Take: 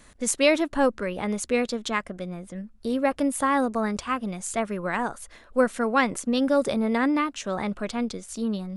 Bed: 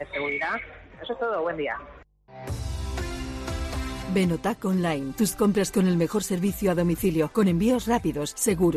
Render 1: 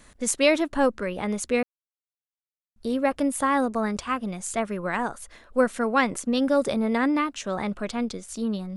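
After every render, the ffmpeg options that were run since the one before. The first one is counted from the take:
ffmpeg -i in.wav -filter_complex "[0:a]asplit=3[link_01][link_02][link_03];[link_01]atrim=end=1.63,asetpts=PTS-STARTPTS,afade=type=out:start_time=1.626:duration=0.004:curve=hsin[link_04];[link_02]atrim=start=1.63:end=2.76,asetpts=PTS-STARTPTS,volume=0[link_05];[link_03]atrim=start=2.76,asetpts=PTS-STARTPTS,afade=type=in:duration=0.004:curve=hsin[link_06];[link_04][link_05][link_06]concat=n=3:v=0:a=1" out.wav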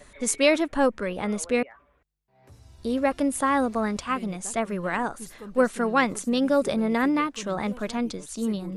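ffmpeg -i in.wav -i bed.wav -filter_complex "[1:a]volume=-19.5dB[link_01];[0:a][link_01]amix=inputs=2:normalize=0" out.wav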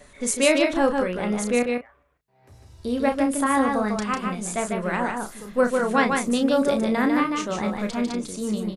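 ffmpeg -i in.wav -filter_complex "[0:a]asplit=2[link_01][link_02];[link_02]adelay=33,volume=-7dB[link_03];[link_01][link_03]amix=inputs=2:normalize=0,aecho=1:1:149:0.631" out.wav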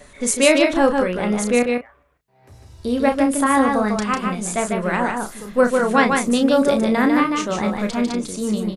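ffmpeg -i in.wav -af "volume=4.5dB" out.wav

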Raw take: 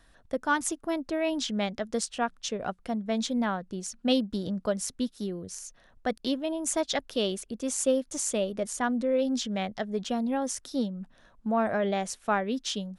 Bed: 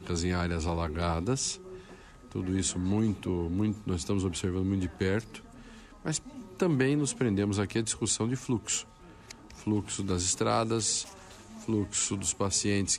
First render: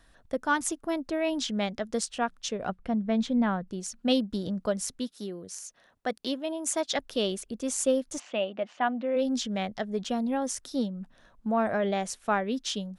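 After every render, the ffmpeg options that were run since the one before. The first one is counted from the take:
ffmpeg -i in.wav -filter_complex "[0:a]asettb=1/sr,asplit=3[link_01][link_02][link_03];[link_01]atrim=end=2.694[link_04];[link_02]atrim=start=2.69:end=3.68,asetpts=PTS-STARTPTS,afade=type=in:duration=0.004:curve=qsin,afade=type=out:start_time=0.986:duration=0.004:curve=qsin,bass=frequency=250:gain=6,treble=frequency=4000:gain=-12[link_05];[link_03]atrim=start=3.676[link_06];[link_04][link_05]acrossfade=duration=0.004:curve1=hsin:curve2=qsin[link_07];[link_07][link_06]acrossfade=duration=0.004:curve1=qsin:curve2=hsin,asettb=1/sr,asplit=3[link_08][link_09][link_10];[link_08]atrim=end=4.994[link_11];[link_09]atrim=start=4.99:end=6.96,asetpts=PTS-STARTPTS,afade=type=in:duration=0.004:curve=qsin,afade=type=out:start_time=1.966:duration=0.004:curve=qsin,highpass=frequency=290:poles=1[link_12];[link_10]atrim=start=6.956[link_13];[link_11][link_12]acrossfade=duration=0.004:curve1=hsin:curve2=qsin[link_14];[link_14][link_13]acrossfade=duration=0.004:curve1=qsin:curve2=hsin,asplit=3[link_15][link_16][link_17];[link_15]afade=type=out:start_time=8.18:duration=0.02[link_18];[link_16]highpass=270,equalizer=frequency=430:width_type=q:width=4:gain=-8,equalizer=frequency=740:width_type=q:width=4:gain=6,equalizer=frequency=2800:width_type=q:width=4:gain=7,lowpass=frequency=3300:width=0.5412,lowpass=frequency=3300:width=1.3066,afade=type=in:start_time=8.18:duration=0.02,afade=type=out:start_time=9.15:duration=0.02[link_19];[link_17]afade=type=in:start_time=9.15:duration=0.02[link_20];[link_18][link_19][link_20]amix=inputs=3:normalize=0" out.wav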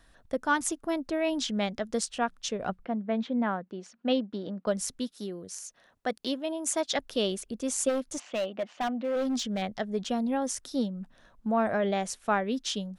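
ffmpeg -i in.wav -filter_complex "[0:a]asettb=1/sr,asplit=3[link_01][link_02][link_03];[link_01]atrim=end=2.854[link_04];[link_02]atrim=start=2.85:end=4.67,asetpts=PTS-STARTPTS,afade=type=in:duration=0.004:curve=qsin,afade=type=out:start_time=1.816:duration=0.004:curve=qsin,highpass=250,lowpass=2800[link_05];[link_03]atrim=start=4.666[link_06];[link_04][link_05]acrossfade=duration=0.004:curve1=hsin:curve2=qsin[link_07];[link_07][link_06]acrossfade=duration=0.004:curve1=qsin:curve2=hsin,asplit=3[link_08][link_09][link_10];[link_08]afade=type=out:start_time=7.88:duration=0.02[link_11];[link_09]asoftclip=type=hard:threshold=-25.5dB,afade=type=in:start_time=7.88:duration=0.02,afade=type=out:start_time=9.61:duration=0.02[link_12];[link_10]afade=type=in:start_time=9.61:duration=0.02[link_13];[link_11][link_12][link_13]amix=inputs=3:normalize=0" out.wav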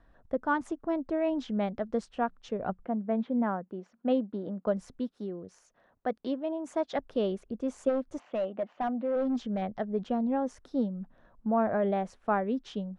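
ffmpeg -i in.wav -af "lowpass=1100,aemphasis=mode=production:type=75kf" out.wav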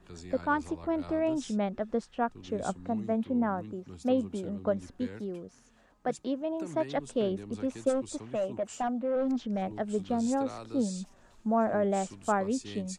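ffmpeg -i in.wav -i bed.wav -filter_complex "[1:a]volume=-15.5dB[link_01];[0:a][link_01]amix=inputs=2:normalize=0" out.wav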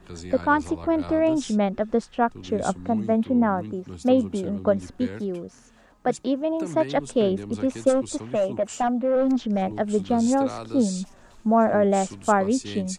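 ffmpeg -i in.wav -af "volume=8dB" out.wav

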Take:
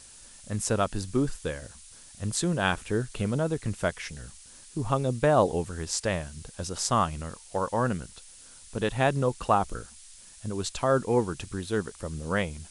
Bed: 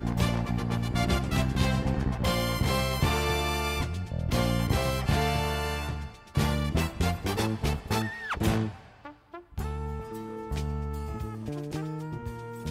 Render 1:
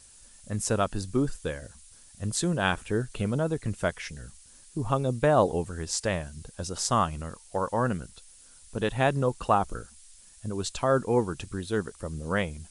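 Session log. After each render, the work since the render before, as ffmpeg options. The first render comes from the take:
ffmpeg -i in.wav -af "afftdn=noise_reduction=6:noise_floor=-50" out.wav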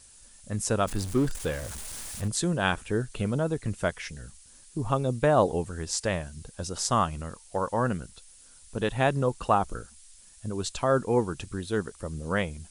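ffmpeg -i in.wav -filter_complex "[0:a]asettb=1/sr,asplit=3[link_01][link_02][link_03];[link_01]atrim=end=0.874[link_04];[link_02]atrim=start=0.87:end=2.28,asetpts=PTS-STARTPTS,afade=type=in:duration=0.004:curve=qsin,afade=type=out:start_time=1.406:duration=0.004:curve=qsin,aeval=exprs='val(0)+0.5*0.02*sgn(val(0))':channel_layout=same[link_05];[link_03]atrim=start=2.276[link_06];[link_04][link_05]acrossfade=duration=0.004:curve1=hsin:curve2=qsin[link_07];[link_07][link_06]acrossfade=duration=0.004:curve1=qsin:curve2=hsin" out.wav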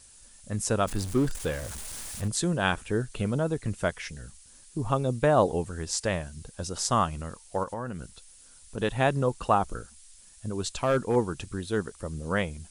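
ffmpeg -i in.wav -filter_complex "[0:a]asettb=1/sr,asplit=3[link_01][link_02][link_03];[link_01]atrim=end=7.634[link_04];[link_02]atrim=start=7.63:end=8.78,asetpts=PTS-STARTPTS,afade=type=in:duration=0.004:curve=qsin,afade=type=out:start_time=1.146:duration=0.004:curve=qsin,acompressor=threshold=-31dB:ratio=4:attack=3.2:release=140:knee=1:detection=peak[link_05];[link_03]atrim=start=8.776[link_06];[link_04][link_05]acrossfade=duration=0.004:curve1=hsin:curve2=qsin[link_07];[link_07][link_06]acrossfade=duration=0.004:curve1=qsin:curve2=hsin,asettb=1/sr,asplit=3[link_08][link_09][link_10];[link_08]atrim=end=10.734[link_11];[link_09]atrim=start=10.73:end=11.16,asetpts=PTS-STARTPTS,afade=type=in:duration=0.004:curve=qsin,afade=type=out:start_time=0.426:duration=0.004:curve=qsin,asoftclip=type=hard:threshold=-18dB[link_12];[link_10]atrim=start=11.156[link_13];[link_11][link_12]acrossfade=duration=0.004:curve1=hsin:curve2=qsin[link_14];[link_14][link_13]acrossfade=duration=0.004:curve1=qsin:curve2=hsin" out.wav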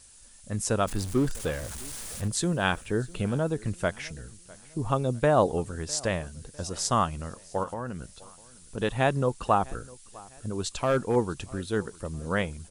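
ffmpeg -i in.wav -af "aecho=1:1:653|1306|1959:0.0708|0.0283|0.0113" out.wav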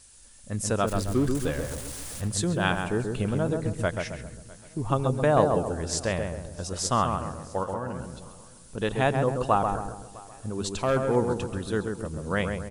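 ffmpeg -i in.wav -filter_complex "[0:a]asplit=2[link_01][link_02];[link_02]adelay=134,lowpass=frequency=1400:poles=1,volume=-4dB,asplit=2[link_03][link_04];[link_04]adelay=134,lowpass=frequency=1400:poles=1,volume=0.46,asplit=2[link_05][link_06];[link_06]adelay=134,lowpass=frequency=1400:poles=1,volume=0.46,asplit=2[link_07][link_08];[link_08]adelay=134,lowpass=frequency=1400:poles=1,volume=0.46,asplit=2[link_09][link_10];[link_10]adelay=134,lowpass=frequency=1400:poles=1,volume=0.46,asplit=2[link_11][link_12];[link_12]adelay=134,lowpass=frequency=1400:poles=1,volume=0.46[link_13];[link_01][link_03][link_05][link_07][link_09][link_11][link_13]amix=inputs=7:normalize=0" out.wav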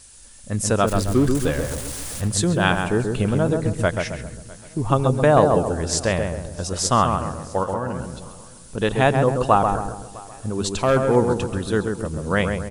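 ffmpeg -i in.wav -af "volume=6.5dB,alimiter=limit=-3dB:level=0:latency=1" out.wav

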